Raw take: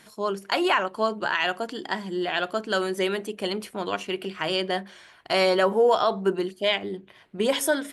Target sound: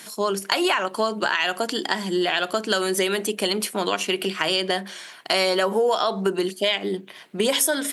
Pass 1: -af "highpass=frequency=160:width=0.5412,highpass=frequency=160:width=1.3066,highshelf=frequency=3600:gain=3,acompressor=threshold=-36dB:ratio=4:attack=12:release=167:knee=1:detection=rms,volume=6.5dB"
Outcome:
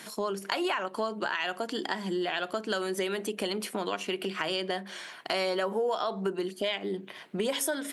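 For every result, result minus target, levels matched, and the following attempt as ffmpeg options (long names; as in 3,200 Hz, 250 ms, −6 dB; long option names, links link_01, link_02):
downward compressor: peak gain reduction +7.5 dB; 8,000 Hz band −3.0 dB
-af "highpass=frequency=160:width=0.5412,highpass=frequency=160:width=1.3066,highshelf=frequency=3600:gain=3,acompressor=threshold=-25dB:ratio=4:attack=12:release=167:knee=1:detection=rms,volume=6.5dB"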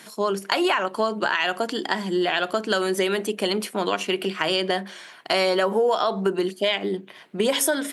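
8,000 Hz band −3.5 dB
-af "highpass=frequency=160:width=0.5412,highpass=frequency=160:width=1.3066,highshelf=frequency=3600:gain=11,acompressor=threshold=-25dB:ratio=4:attack=12:release=167:knee=1:detection=rms,volume=6.5dB"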